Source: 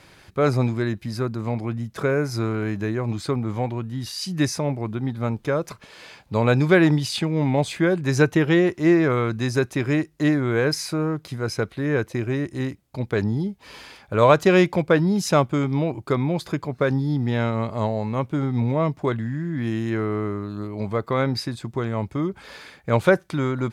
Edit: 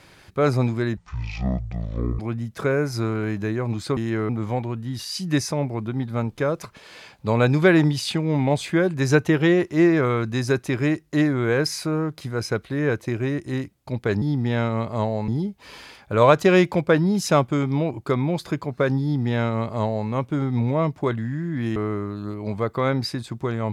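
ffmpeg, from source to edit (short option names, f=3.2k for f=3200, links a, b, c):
-filter_complex "[0:a]asplit=8[a][b][c][d][e][f][g][h];[a]atrim=end=0.974[i];[b]atrim=start=0.97:end=1.58,asetpts=PTS-STARTPTS,asetrate=22050,aresample=44100[j];[c]atrim=start=1.576:end=3.362[k];[d]atrim=start=19.768:end=20.092[l];[e]atrim=start=3.358:end=13.292[m];[f]atrim=start=17.038:end=18.102[n];[g]atrim=start=13.288:end=19.772[o];[h]atrim=start=20.088[p];[i][j]acrossfade=d=0.004:c1=hsin:c2=hsin[q];[q][k]acrossfade=d=0.004:c1=hsin:c2=hsin[r];[r][l]acrossfade=d=0.004:c1=hsin:c2=hsin[s];[s][m]acrossfade=d=0.004:c1=hsin:c2=hsin[t];[t][n]acrossfade=d=0.004:c1=hsin:c2=hsin[u];[u][o]acrossfade=d=0.004:c1=hsin:c2=hsin[v];[v][p]acrossfade=d=0.004:c1=hsin:c2=hsin"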